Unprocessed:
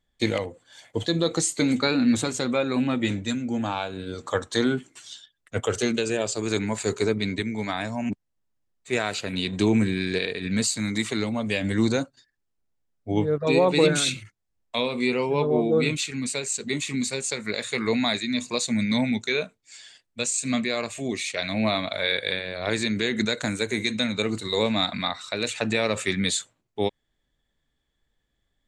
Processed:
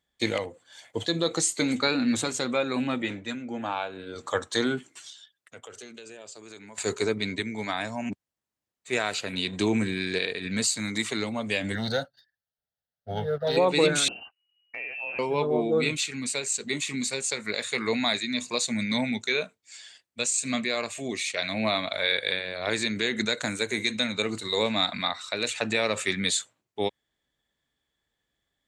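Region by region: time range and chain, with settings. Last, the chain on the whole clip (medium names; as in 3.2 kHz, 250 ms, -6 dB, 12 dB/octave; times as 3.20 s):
3.02–4.16 s: high-pass 55 Hz + tone controls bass -6 dB, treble -12 dB
5.10–6.78 s: high-pass 150 Hz 6 dB/octave + compression 3:1, threshold -45 dBFS
11.75–13.57 s: waveshaping leveller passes 1 + static phaser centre 1.6 kHz, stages 8
14.08–15.19 s: frequency inversion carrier 2.9 kHz + compression 2:1, threshold -39 dBFS
whole clip: high-pass 56 Hz; bass shelf 340 Hz -7 dB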